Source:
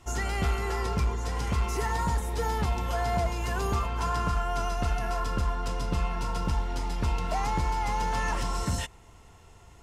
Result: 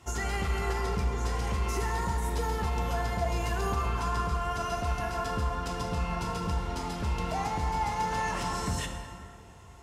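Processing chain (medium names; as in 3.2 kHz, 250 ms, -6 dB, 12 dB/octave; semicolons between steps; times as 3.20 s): high-pass 46 Hz 24 dB/octave; peak limiter -23 dBFS, peak gain reduction 8 dB; plate-style reverb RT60 2.3 s, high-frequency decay 0.55×, DRR 3.5 dB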